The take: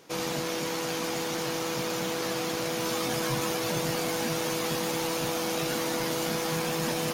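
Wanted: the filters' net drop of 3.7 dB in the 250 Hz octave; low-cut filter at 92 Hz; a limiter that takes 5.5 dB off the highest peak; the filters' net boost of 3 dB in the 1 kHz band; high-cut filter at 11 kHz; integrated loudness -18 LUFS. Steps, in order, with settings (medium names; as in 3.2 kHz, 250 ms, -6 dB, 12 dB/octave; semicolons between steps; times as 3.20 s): high-pass 92 Hz; low-pass 11 kHz; peaking EQ 250 Hz -6 dB; peaking EQ 1 kHz +4 dB; trim +13.5 dB; peak limiter -9 dBFS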